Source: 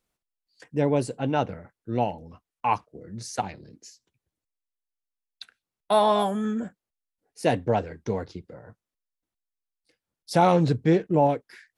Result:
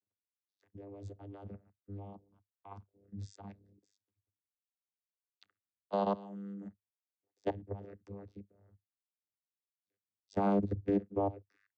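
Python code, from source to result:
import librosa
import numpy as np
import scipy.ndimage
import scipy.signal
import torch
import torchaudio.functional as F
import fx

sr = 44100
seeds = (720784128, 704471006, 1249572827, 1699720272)

y = fx.level_steps(x, sr, step_db=20)
y = fx.vocoder(y, sr, bands=16, carrier='saw', carrier_hz=99.9)
y = y * librosa.db_to_amplitude(-7.5)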